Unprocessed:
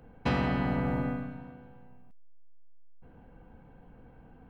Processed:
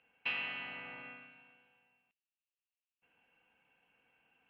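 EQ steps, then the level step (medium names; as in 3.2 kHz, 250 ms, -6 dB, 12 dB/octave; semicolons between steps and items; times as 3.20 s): band-pass filter 2.7 kHz, Q 8.4; distance through air 160 m; +12.0 dB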